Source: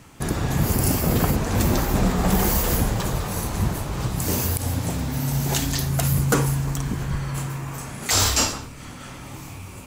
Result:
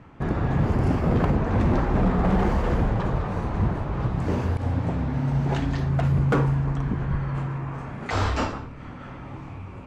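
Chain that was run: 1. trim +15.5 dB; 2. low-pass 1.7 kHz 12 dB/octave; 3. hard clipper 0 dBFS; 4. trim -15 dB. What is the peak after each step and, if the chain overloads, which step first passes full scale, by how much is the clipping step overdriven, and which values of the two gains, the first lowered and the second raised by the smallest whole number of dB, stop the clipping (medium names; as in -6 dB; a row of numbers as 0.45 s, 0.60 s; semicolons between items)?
+10.0 dBFS, +8.5 dBFS, 0.0 dBFS, -15.0 dBFS; step 1, 8.5 dB; step 1 +6.5 dB, step 4 -6 dB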